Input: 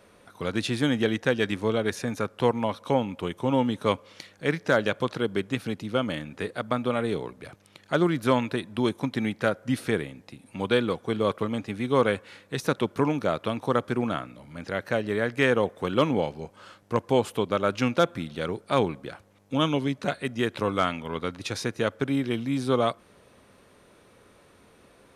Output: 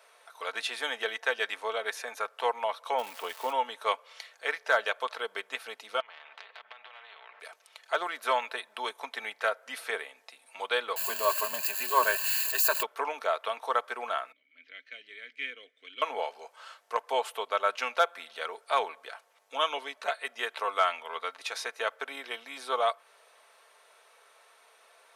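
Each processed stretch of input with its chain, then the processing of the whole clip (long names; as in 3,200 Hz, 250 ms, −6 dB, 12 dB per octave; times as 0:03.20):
0:02.97–0:03.51: low-shelf EQ 350 Hz +9 dB + surface crackle 570 per second −31 dBFS
0:06.00–0:07.40: low-pass filter 2,300 Hz 24 dB per octave + downward compressor, threshold −40 dBFS + every bin compressed towards the loudest bin 4 to 1
0:10.96–0:12.83: spike at every zero crossing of −21.5 dBFS + EQ curve with evenly spaced ripples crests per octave 1.4, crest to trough 16 dB
0:14.32–0:16.02: low-pass that shuts in the quiet parts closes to 2,300 Hz, open at −21.5 dBFS + formant filter i + high-shelf EQ 3,800 Hz +9 dB
whole clip: high-pass filter 630 Hz 24 dB per octave; comb filter 4.5 ms, depth 46%; dynamic equaliser 6,500 Hz, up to −5 dB, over −49 dBFS, Q 0.72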